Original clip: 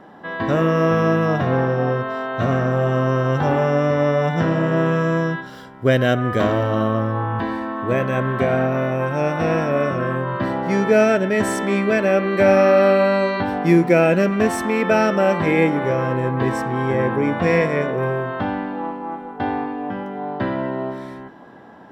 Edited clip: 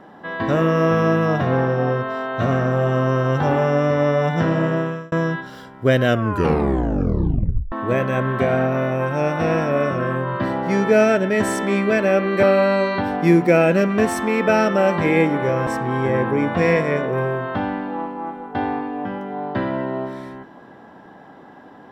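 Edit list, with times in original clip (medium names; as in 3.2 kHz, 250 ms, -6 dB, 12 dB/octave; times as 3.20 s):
4.65–5.12 s: fade out
6.06 s: tape stop 1.66 s
12.43–12.85 s: delete
16.09–16.52 s: delete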